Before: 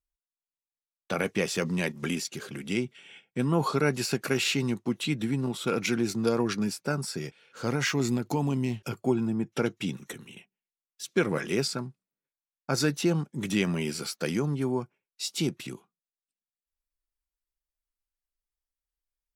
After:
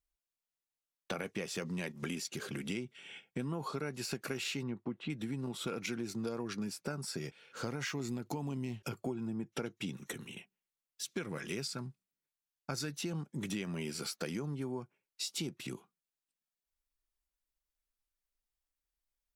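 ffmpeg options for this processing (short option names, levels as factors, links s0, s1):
-filter_complex "[0:a]asettb=1/sr,asplit=3[s0][s1][s2];[s0]atrim=end=4.634[s3];[s1]atrim=start=4.63:end=5.1,asetpts=PTS-STARTPTS,afade=t=in:d=0.004:c=qsin,afade=t=out:st=0.466:d=0.004:c=qsin,lowpass=2000[s4];[s2]atrim=start=5.096[s5];[s3][s4]acrossfade=d=0.004:c1=hsin:c2=qsin[s6];[s6][s5]acrossfade=d=0.004:c1=qsin:c2=hsin,asettb=1/sr,asplit=3[s7][s8][s9];[s7]atrim=end=11.044[s10];[s8]atrim=start=11.04:end=13.13,asetpts=PTS-STARTPTS,afade=t=in:d=0.004:c=qsin,afade=t=out:st=2.086:d=0.004:c=qsin,equalizer=f=540:w=0.4:g=-5.5[s11];[s9]atrim=start=13.126[s12];[s10][s11]acrossfade=d=0.004:c1=hsin:c2=qsin[s13];[s13][s12]acrossfade=d=0.004:c1=qsin:c2=hsin,acompressor=threshold=0.0158:ratio=5"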